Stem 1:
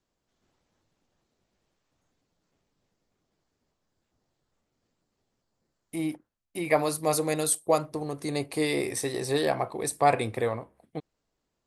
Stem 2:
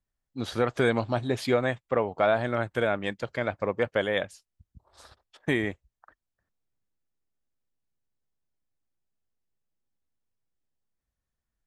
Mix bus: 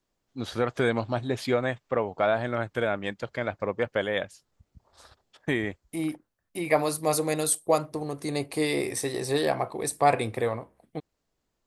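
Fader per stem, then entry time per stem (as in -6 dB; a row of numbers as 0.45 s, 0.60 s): +0.5 dB, -1.0 dB; 0.00 s, 0.00 s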